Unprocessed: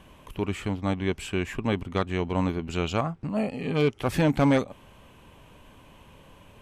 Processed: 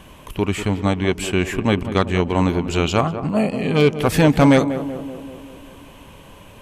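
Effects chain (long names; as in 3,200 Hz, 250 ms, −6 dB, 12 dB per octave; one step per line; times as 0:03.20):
high-shelf EQ 4,900 Hz +5 dB
tape delay 191 ms, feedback 70%, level −8.5 dB, low-pass 1,100 Hz
level +8 dB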